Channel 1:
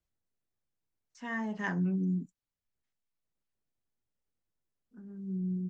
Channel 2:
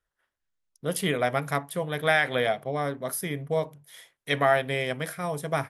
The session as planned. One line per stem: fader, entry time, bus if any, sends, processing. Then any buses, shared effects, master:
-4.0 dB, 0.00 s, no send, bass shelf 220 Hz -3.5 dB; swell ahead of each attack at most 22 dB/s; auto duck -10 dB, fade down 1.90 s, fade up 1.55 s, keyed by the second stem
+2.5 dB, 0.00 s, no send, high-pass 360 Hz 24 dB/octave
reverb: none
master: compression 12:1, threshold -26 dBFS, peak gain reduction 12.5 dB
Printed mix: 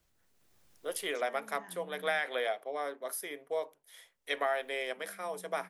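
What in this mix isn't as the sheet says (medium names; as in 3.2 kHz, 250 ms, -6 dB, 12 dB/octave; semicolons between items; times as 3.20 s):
stem 1 -4.0 dB -> -11.5 dB; stem 2 +2.5 dB -> -6.5 dB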